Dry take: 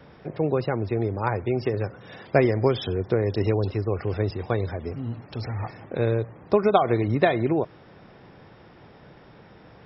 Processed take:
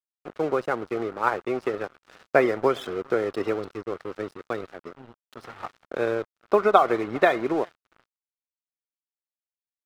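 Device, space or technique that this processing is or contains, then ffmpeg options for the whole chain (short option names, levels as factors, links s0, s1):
pocket radio on a weak battery: -filter_complex "[0:a]asettb=1/sr,asplit=3[s0][s1][s2];[s0]atrim=end=3.534[s3];[s1]atrim=start=3.53:end=5.37,asetpts=PTS-STARTPTS,afade=t=in:d=0.004:c=qsin,afade=t=out:st=1.836:d=0.004:c=qsin,equalizer=f=990:t=o:w=2.2:g=-6[s4];[s2]atrim=start=5.366[s5];[s3][s4]acrossfade=d=0.004:c1=hsin:c2=qsin[s6];[s6][s5]acrossfade=d=0.004:c1=qsin:c2=hsin,highpass=320,lowpass=4000,aecho=1:1:404|808:0.0668|0.0134,aeval=exprs='sgn(val(0))*max(abs(val(0))-0.00944,0)':c=same,equalizer=f=1300:t=o:w=0.48:g=8,volume=1.19"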